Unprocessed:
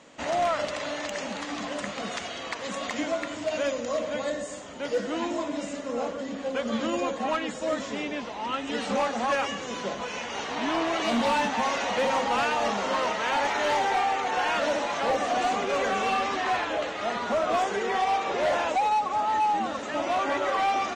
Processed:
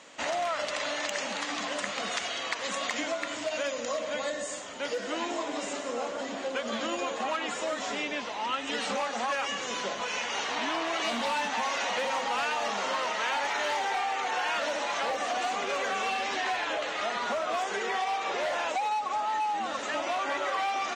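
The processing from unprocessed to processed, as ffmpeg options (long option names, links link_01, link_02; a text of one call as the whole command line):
ffmpeg -i in.wav -filter_complex "[0:a]asettb=1/sr,asplit=3[link_01][link_02][link_03];[link_01]atrim=end=4.674[link_04];[link_02]atrim=start=4.67:end=7.95,asetpts=PTS-STARTPTS,afade=type=in:duration=0.004:curve=qsin,afade=type=out:start_time=3.276:duration=0.004:curve=qsin,asplit=7[link_05][link_06][link_07][link_08][link_09][link_10][link_11];[link_06]adelay=176,afreqshift=110,volume=-11.5dB[link_12];[link_07]adelay=352,afreqshift=220,volume=-17.2dB[link_13];[link_08]adelay=528,afreqshift=330,volume=-22.9dB[link_14];[link_09]adelay=704,afreqshift=440,volume=-28.5dB[link_15];[link_10]adelay=880,afreqshift=550,volume=-34.2dB[link_16];[link_11]adelay=1056,afreqshift=660,volume=-39.9dB[link_17];[link_05][link_12][link_13][link_14][link_15][link_16][link_17]amix=inputs=7:normalize=0,atrim=end_sample=144648[link_18];[link_03]atrim=start=7.946[link_19];[link_04][link_18]acrossfade=duration=0.004:curve1=hsin:curve2=qsin[link_20];[link_20][link_19]acrossfade=duration=0.004:curve1=qsin:curve2=hsin,asettb=1/sr,asplit=3[link_21][link_22][link_23];[link_21]atrim=end=16.114[link_24];[link_22]atrim=start=16.11:end=16.67,asetpts=PTS-STARTPTS,afade=type=in:duration=0.004:curve=qsin,afade=type=out:start_time=0.556:duration=0.004:curve=qsin,equalizer=frequency=1200:width=4.9:gain=-8.5[link_25];[link_23]atrim=start=16.666[link_26];[link_24][link_25]acrossfade=duration=0.004:curve1=hsin:curve2=qsin[link_27];[link_27][link_26]acrossfade=duration=0.004:curve1=qsin:curve2=hsin,lowshelf=frequency=230:gain=-9,acompressor=threshold=-29dB:ratio=6,tiltshelf=frequency=860:gain=-3,volume=1.5dB" out.wav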